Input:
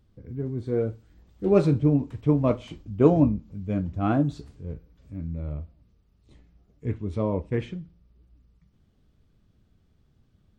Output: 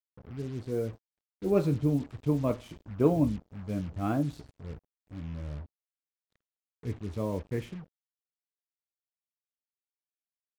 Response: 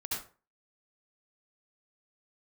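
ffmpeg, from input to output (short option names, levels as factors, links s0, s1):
-af "acrusher=bits=6:mix=0:aa=0.5,volume=0.501"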